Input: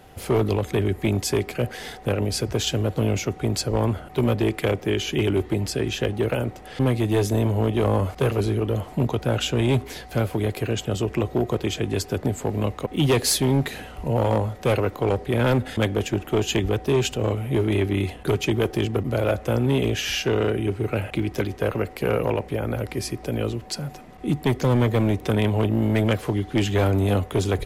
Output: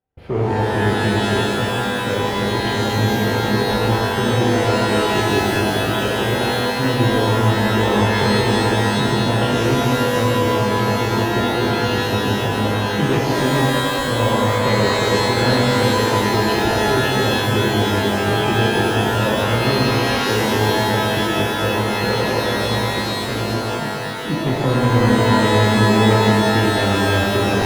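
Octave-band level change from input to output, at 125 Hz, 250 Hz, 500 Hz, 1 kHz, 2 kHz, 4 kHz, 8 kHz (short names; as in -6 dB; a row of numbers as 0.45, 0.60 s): +4.0, +5.5, +5.5, +13.0, +12.0, +9.5, +3.0 dB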